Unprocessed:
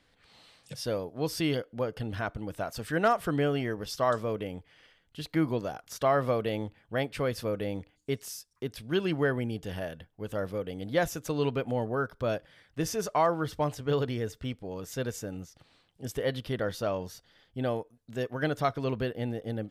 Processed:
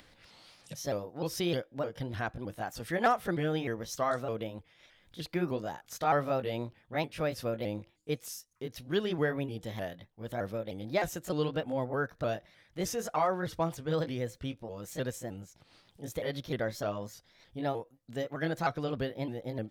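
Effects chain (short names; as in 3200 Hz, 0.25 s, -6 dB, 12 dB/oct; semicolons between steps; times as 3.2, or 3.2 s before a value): repeated pitch sweeps +3 st, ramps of 0.306 s; upward compressor, threshold -49 dBFS; gain -1.5 dB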